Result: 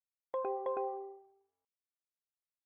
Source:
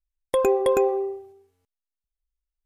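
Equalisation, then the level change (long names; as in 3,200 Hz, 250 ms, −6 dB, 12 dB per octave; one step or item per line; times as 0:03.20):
resonant band-pass 880 Hz, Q 1.8
high-frequency loss of the air 280 metres
−8.0 dB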